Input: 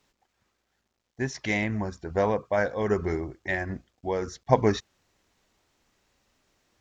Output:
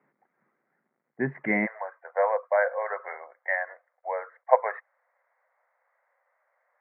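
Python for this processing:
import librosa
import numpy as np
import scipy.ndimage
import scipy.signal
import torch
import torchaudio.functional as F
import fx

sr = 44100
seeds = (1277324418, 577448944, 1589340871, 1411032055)

y = fx.cheby1_bandpass(x, sr, low_hz=fx.steps((0.0, 140.0), (1.65, 510.0)), high_hz=2100.0, order=5)
y = y * librosa.db_to_amplitude(3.0)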